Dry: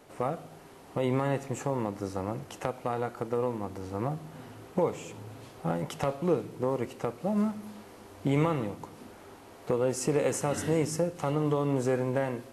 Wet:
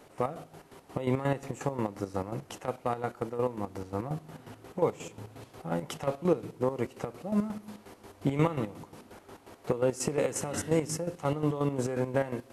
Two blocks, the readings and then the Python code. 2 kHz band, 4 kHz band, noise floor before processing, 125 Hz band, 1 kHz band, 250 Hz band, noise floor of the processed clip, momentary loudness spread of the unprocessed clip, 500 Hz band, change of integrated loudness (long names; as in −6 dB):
−1.5 dB, −1.0 dB, −51 dBFS, −1.5 dB, −1.5 dB, −1.5 dB, −57 dBFS, 18 LU, −1.5 dB, −1.5 dB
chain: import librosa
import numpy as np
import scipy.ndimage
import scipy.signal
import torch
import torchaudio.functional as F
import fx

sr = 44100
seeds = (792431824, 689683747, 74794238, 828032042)

y = fx.chopper(x, sr, hz=5.6, depth_pct=65, duty_pct=45)
y = y * librosa.db_to_amplitude(1.5)